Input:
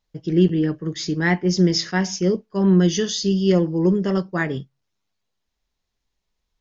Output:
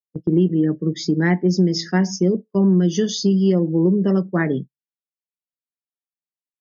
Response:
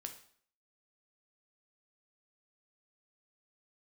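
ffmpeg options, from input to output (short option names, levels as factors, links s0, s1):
-af "afftdn=nr=22:nf=-35,highpass=f=170:w=0.5412,highpass=f=170:w=1.3066,agate=range=0.251:threshold=0.0126:ratio=16:detection=peak,lowshelf=f=410:g=11.5,acompressor=threshold=0.2:ratio=4"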